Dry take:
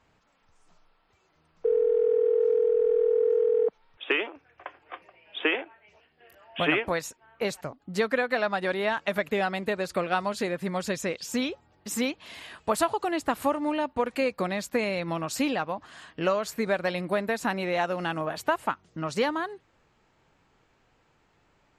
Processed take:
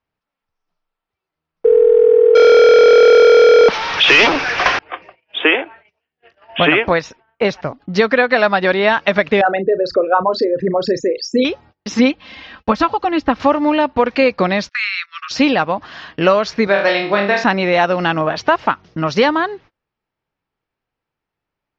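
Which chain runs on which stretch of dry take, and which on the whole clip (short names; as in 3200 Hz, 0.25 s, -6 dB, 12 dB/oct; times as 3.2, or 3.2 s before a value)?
2.35–4.79 HPF 1000 Hz 6 dB/oct + power-law curve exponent 0.35
6.93–7.67 high shelf 4800 Hz -8.5 dB + notch 4400 Hz, Q 19
9.41–11.45 formant sharpening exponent 3 + doubler 36 ms -13 dB
11.99–13.4 tone controls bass +6 dB, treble -4 dB + comb 3.8 ms, depth 60% + upward expander, over -32 dBFS
14.69–15.31 steep high-pass 1200 Hz 96 dB/oct + gate -46 dBFS, range -20 dB
16.67–17.44 HPF 450 Hz 6 dB/oct + flutter echo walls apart 4.3 m, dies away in 0.41 s
whole clip: elliptic low-pass 5700 Hz, stop band 40 dB; gate -54 dBFS, range -29 dB; maximiser +15 dB; gain -1 dB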